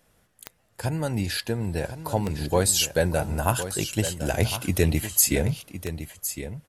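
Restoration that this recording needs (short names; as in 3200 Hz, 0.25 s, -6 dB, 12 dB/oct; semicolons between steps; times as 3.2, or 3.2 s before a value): de-click; inverse comb 1.06 s -11 dB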